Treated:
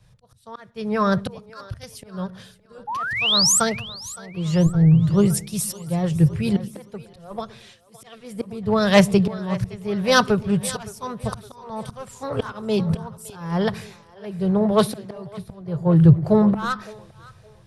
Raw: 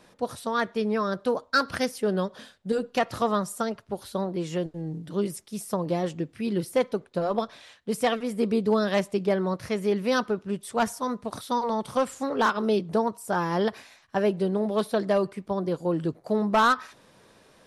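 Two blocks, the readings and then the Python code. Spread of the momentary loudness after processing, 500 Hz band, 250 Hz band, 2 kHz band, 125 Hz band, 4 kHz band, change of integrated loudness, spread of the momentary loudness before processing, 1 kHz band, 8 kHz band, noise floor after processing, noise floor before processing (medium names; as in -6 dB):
21 LU, +1.0 dB, +6.5 dB, +3.5 dB, +14.5 dB, +11.0 dB, +7.0 dB, 7 LU, -0.5 dB, +15.0 dB, -53 dBFS, -58 dBFS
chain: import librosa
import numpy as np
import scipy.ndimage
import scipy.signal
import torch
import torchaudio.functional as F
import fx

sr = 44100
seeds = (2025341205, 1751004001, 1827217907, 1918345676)

p1 = fx.low_shelf_res(x, sr, hz=180.0, db=13.0, q=3.0)
p2 = fx.auto_swell(p1, sr, attack_ms=534.0)
p3 = 10.0 ** (-23.5 / 20.0) * np.tanh(p2 / 10.0 ** (-23.5 / 20.0))
p4 = p2 + (p3 * librosa.db_to_amplitude(-7.5))
p5 = fx.spec_paint(p4, sr, seeds[0], shape='rise', start_s=2.87, length_s=0.73, low_hz=800.0, high_hz=8500.0, level_db=-29.0)
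p6 = p5 + fx.echo_split(p5, sr, split_hz=330.0, low_ms=113, high_ms=565, feedback_pct=52, wet_db=-13.0, dry=0)
p7 = fx.band_widen(p6, sr, depth_pct=70)
y = p7 * librosa.db_to_amplitude(5.5)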